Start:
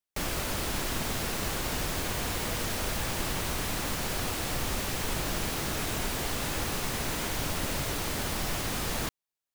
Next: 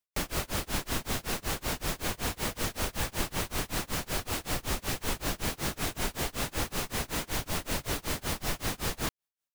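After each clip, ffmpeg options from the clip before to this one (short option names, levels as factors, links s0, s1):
-af "tremolo=f=5.3:d=0.98,volume=1.33"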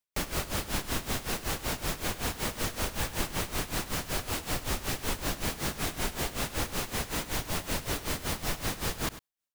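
-af "aecho=1:1:101:0.188"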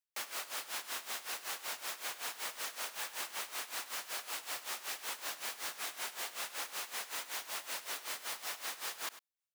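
-af "highpass=840,volume=0.531"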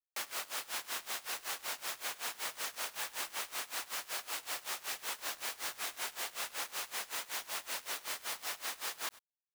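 -af "aeval=exprs='sgn(val(0))*max(abs(val(0))-0.00188,0)':c=same,volume=1.33"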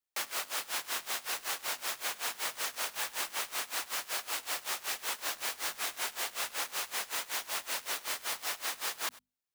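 -af "bandreject=f=50:t=h:w=6,bandreject=f=100:t=h:w=6,bandreject=f=150:t=h:w=6,bandreject=f=200:t=h:w=6,bandreject=f=250:t=h:w=6,volume=1.58"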